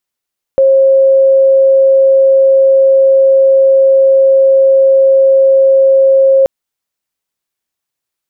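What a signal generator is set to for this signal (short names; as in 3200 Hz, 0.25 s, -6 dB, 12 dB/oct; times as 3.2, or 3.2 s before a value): tone sine 538 Hz -4 dBFS 5.88 s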